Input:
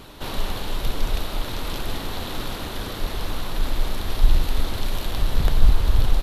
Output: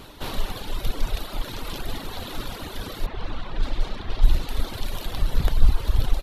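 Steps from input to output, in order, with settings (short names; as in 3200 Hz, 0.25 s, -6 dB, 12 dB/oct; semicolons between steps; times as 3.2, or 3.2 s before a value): reverb removal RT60 1.5 s; 3.06–4.49 low-pass opened by the level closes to 2100 Hz, open at -10 dBFS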